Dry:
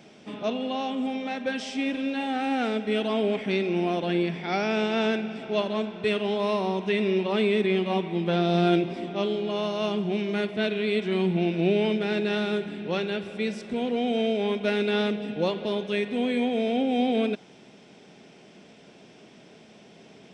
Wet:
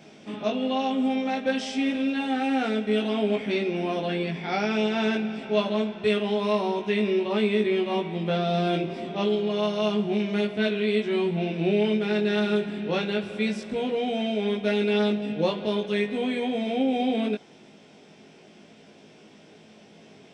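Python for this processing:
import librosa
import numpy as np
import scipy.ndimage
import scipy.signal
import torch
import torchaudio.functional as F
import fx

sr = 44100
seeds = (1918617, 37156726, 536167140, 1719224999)

p1 = fx.rider(x, sr, range_db=10, speed_s=0.5)
p2 = x + F.gain(torch.from_numpy(p1), -0.5).numpy()
p3 = fx.doubler(p2, sr, ms=19.0, db=-2.0)
y = F.gain(torch.from_numpy(p3), -7.5).numpy()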